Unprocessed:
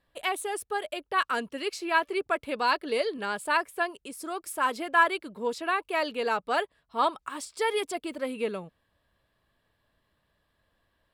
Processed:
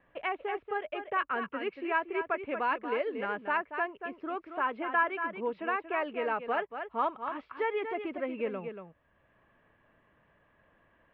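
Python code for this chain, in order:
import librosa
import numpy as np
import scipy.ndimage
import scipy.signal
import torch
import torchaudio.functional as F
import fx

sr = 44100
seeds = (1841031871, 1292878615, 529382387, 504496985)

y = scipy.signal.sosfilt(scipy.signal.butter(6, 2600.0, 'lowpass', fs=sr, output='sos'), x)
y = y + 10.0 ** (-9.5 / 20.0) * np.pad(y, (int(233 * sr / 1000.0), 0))[:len(y)]
y = fx.band_squash(y, sr, depth_pct=40)
y = y * 10.0 ** (-4.0 / 20.0)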